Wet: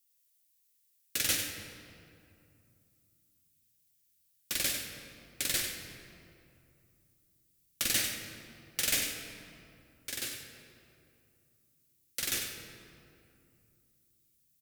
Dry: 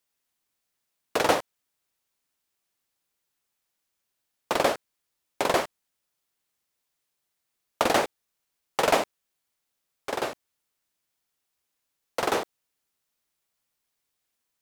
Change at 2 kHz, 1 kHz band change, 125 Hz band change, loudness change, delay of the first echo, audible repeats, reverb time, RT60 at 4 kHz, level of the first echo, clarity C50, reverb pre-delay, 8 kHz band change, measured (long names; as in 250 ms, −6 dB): −6.0 dB, −24.0 dB, −4.5 dB, −5.5 dB, 98 ms, 1, 2.6 s, 1.5 s, −8.0 dB, 3.5 dB, 3 ms, +5.5 dB